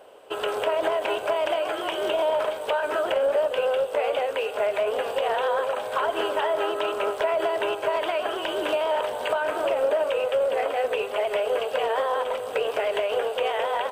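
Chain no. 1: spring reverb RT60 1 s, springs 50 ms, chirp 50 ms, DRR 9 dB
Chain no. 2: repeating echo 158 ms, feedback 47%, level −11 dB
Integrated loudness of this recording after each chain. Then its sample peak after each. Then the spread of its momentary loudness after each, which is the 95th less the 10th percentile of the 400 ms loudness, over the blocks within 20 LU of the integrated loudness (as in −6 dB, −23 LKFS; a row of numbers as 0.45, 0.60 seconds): −25.0, −25.0 LKFS; −12.0, −12.0 dBFS; 4, 3 LU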